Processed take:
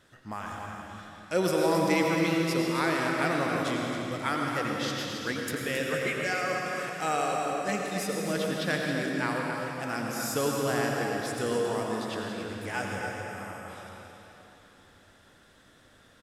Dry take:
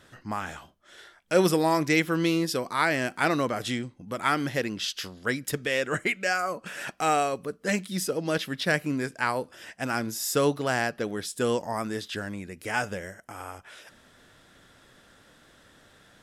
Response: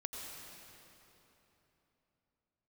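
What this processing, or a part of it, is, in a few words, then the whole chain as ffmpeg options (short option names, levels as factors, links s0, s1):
cave: -filter_complex "[0:a]aecho=1:1:270:0.376[s0];[1:a]atrim=start_sample=2205[s1];[s0][s1]afir=irnorm=-1:irlink=0,volume=0.794"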